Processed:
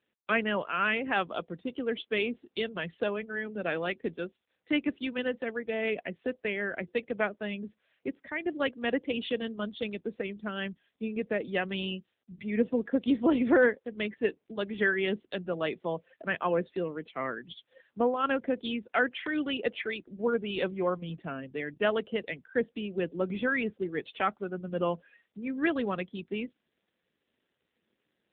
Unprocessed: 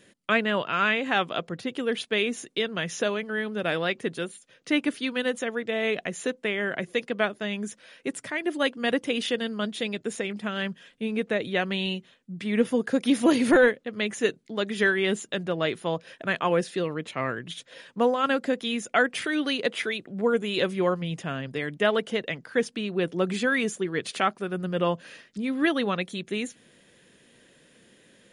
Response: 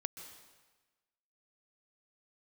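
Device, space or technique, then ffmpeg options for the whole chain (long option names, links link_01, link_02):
mobile call with aggressive noise cancelling: -af "highpass=frequency=160:width=0.5412,highpass=frequency=160:width=1.3066,afftdn=noise_reduction=16:noise_floor=-36,volume=-3.5dB" -ar 8000 -c:a libopencore_amrnb -b:a 7950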